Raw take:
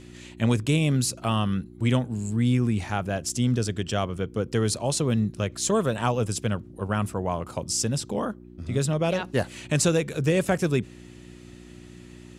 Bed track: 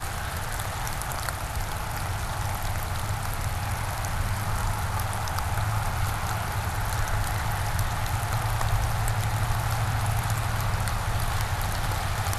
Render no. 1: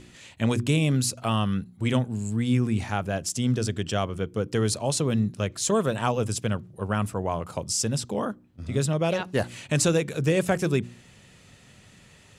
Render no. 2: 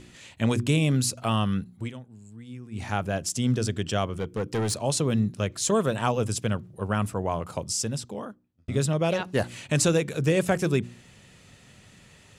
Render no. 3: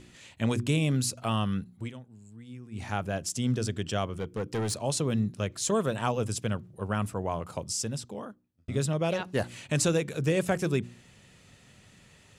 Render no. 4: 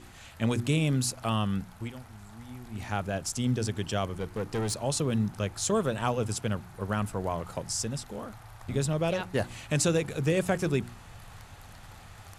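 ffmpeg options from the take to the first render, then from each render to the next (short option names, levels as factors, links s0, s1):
-af "bandreject=f=60:t=h:w=4,bandreject=f=120:t=h:w=4,bandreject=f=180:t=h:w=4,bandreject=f=240:t=h:w=4,bandreject=f=300:t=h:w=4,bandreject=f=360:t=h:w=4"
-filter_complex "[0:a]asettb=1/sr,asplit=3[s0][s1][s2];[s0]atrim=end=4.194[s3];[s1]atrim=start=4.19:end=4.78,asetpts=PTS-STARTPTS,afade=t=in:d=0.004:c=qsin,afade=t=out:st=0.586:d=0.004:c=qsin,asoftclip=type=hard:threshold=0.075[s4];[s2]atrim=start=4.776[s5];[s3][s4]acrossfade=d=0.004:c1=hsin:c2=qsin[s6];[s6][s5]acrossfade=d=0.004:c1=qsin:c2=hsin,asplit=4[s7][s8][s9][s10];[s7]atrim=end=1.92,asetpts=PTS-STARTPTS,afade=t=out:st=1.75:d=0.17:silence=0.125893[s11];[s8]atrim=start=1.92:end=2.71,asetpts=PTS-STARTPTS,volume=0.126[s12];[s9]atrim=start=2.71:end=8.68,asetpts=PTS-STARTPTS,afade=t=in:d=0.17:silence=0.125893,afade=t=out:st=4.83:d=1.14[s13];[s10]atrim=start=8.68,asetpts=PTS-STARTPTS,afade=t=in:d=0.004:c=hsin[s14];[s11][s12][s13][s14]concat=n=4:v=0:a=1"
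-af "volume=0.668"
-filter_complex "[1:a]volume=0.0841[s0];[0:a][s0]amix=inputs=2:normalize=0"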